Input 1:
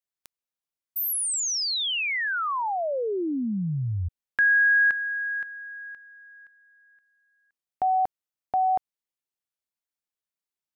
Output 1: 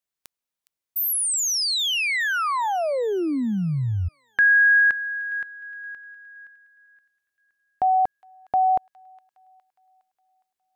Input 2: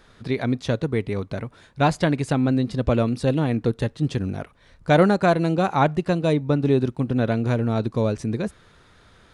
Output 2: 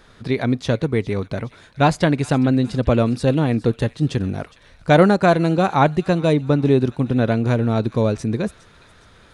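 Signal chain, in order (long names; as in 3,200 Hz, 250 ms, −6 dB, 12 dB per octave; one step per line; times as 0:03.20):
delay with a high-pass on its return 412 ms, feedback 48%, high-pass 1,700 Hz, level −17 dB
level +3.5 dB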